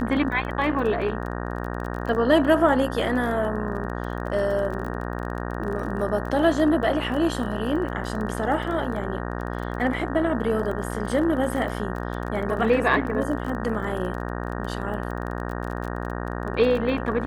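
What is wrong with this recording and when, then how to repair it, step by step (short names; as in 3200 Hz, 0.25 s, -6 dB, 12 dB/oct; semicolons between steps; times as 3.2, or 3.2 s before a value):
buzz 60 Hz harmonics 31 -30 dBFS
crackle 24/s -31 dBFS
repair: de-click; de-hum 60 Hz, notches 31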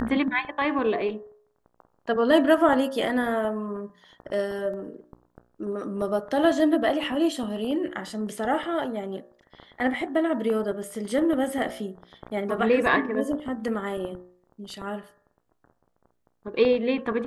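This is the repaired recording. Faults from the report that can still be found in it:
none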